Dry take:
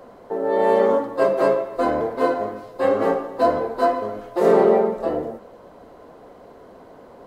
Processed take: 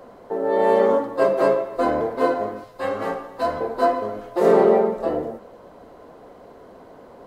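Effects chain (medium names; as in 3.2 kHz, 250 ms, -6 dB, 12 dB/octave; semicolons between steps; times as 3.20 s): 2.64–3.61 s: peaking EQ 370 Hz -9 dB 2.1 oct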